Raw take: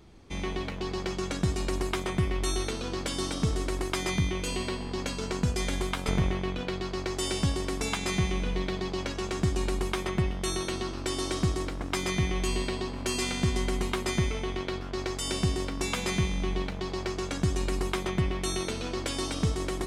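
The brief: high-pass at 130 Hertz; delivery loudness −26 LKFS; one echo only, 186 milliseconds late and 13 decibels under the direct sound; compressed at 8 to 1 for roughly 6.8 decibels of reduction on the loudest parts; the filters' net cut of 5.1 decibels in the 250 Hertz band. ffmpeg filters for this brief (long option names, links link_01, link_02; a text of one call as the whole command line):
ffmpeg -i in.wav -af "highpass=130,equalizer=frequency=250:width_type=o:gain=-7.5,acompressor=threshold=-33dB:ratio=8,aecho=1:1:186:0.224,volume=11dB" out.wav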